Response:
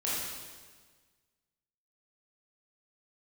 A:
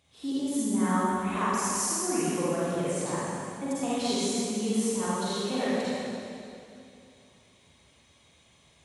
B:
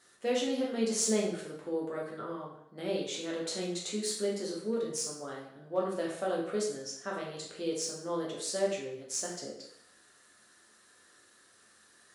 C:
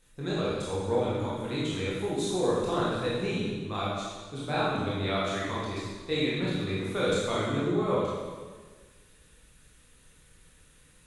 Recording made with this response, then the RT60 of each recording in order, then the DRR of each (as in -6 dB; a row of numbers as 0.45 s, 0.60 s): C; 2.6 s, 0.75 s, 1.5 s; -10.0 dB, -3.5 dB, -8.0 dB